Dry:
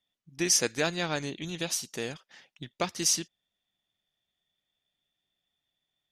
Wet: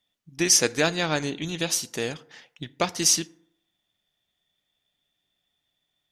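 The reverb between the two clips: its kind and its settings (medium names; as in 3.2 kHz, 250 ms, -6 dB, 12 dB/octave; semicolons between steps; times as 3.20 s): FDN reverb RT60 0.75 s, low-frequency decay 0.85×, high-frequency decay 0.45×, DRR 17 dB; trim +5.5 dB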